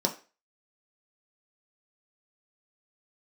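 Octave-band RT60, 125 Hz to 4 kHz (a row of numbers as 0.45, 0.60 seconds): 0.20, 0.30, 0.35, 0.35, 0.35, 0.35 seconds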